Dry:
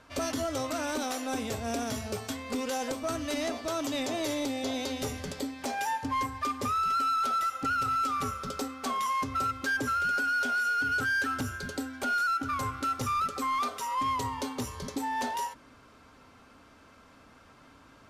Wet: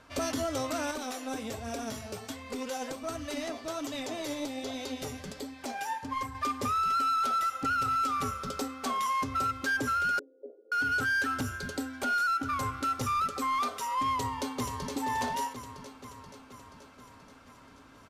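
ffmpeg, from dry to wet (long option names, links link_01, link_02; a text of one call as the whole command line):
ffmpeg -i in.wav -filter_complex "[0:a]asettb=1/sr,asplit=3[link_01][link_02][link_03];[link_01]atrim=end=0.914[link_04];[link_02]atrim=start=0.91:end=6.35,asetpts=PTS-STARTPTS,afade=type=in:duration=0.004:curve=qsin,afade=type=out:start_time=5.436:duration=0.004:curve=qsin,flanger=delay=0.4:depth=7.6:regen=51:speed=1.3:shape=triangular[link_05];[link_03]atrim=start=6.346[link_06];[link_04][link_05]acrossfade=duration=0.004:curve1=hsin:curve2=qsin[link_07];[link_07][link_06]acrossfade=duration=0.004:curve1=qsin:curve2=hsin,asettb=1/sr,asplit=3[link_08][link_09][link_10];[link_08]atrim=end=10.194[link_11];[link_09]atrim=start=10.19:end=10.72,asetpts=PTS-STARTPTS,afade=type=in:duration=0.004:curve=qsin,afade=type=out:start_time=0.526:duration=0.004:curve=qsin,asuperpass=centerf=410:order=8:qfactor=1.7[link_12];[link_10]atrim=start=10.716[link_13];[link_11][link_12]acrossfade=duration=0.004:curve1=hsin:curve2=qsin[link_14];[link_14][link_13]acrossfade=duration=0.004:curve1=qsin:curve2=hsin,asplit=2[link_15][link_16];[link_16]afade=type=in:start_time=14.12:duration=0.01,afade=type=out:start_time=14.92:duration=0.01,aecho=0:1:480|960|1440|1920|2400|2880|3360|3840|4320:0.446684|0.290344|0.188724|0.12267|0.0797358|0.0518283|0.0336884|0.0218974|0.0142333[link_17];[link_15][link_17]amix=inputs=2:normalize=0" out.wav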